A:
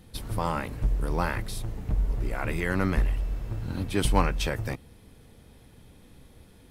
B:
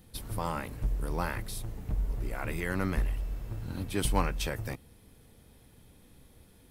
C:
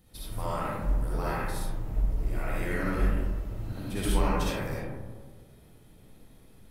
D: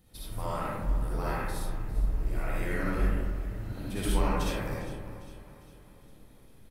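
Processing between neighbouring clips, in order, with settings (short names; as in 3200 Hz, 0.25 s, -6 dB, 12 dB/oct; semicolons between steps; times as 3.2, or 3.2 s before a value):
high shelf 9900 Hz +10 dB; gain -5 dB
reverb RT60 1.5 s, pre-delay 20 ms, DRR -7 dB; gain -6 dB
feedback echo 0.403 s, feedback 50%, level -15.5 dB; gain -1.5 dB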